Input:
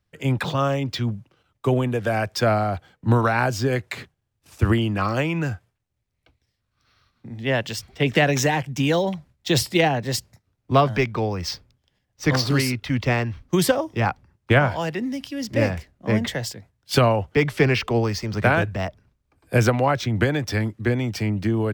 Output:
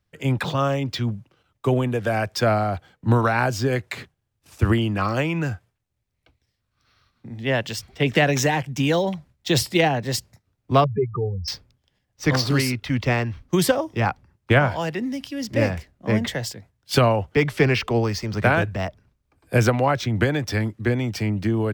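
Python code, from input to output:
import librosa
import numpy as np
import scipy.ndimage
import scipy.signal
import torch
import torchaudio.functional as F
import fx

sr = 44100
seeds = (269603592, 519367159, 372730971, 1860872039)

y = fx.spec_expand(x, sr, power=3.9, at=(10.84, 11.48))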